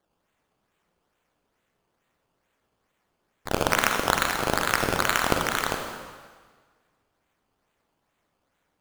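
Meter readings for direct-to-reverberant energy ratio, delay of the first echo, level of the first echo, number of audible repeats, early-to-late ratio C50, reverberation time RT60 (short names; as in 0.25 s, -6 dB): 3.0 dB, none, none, none, 4.0 dB, 1.6 s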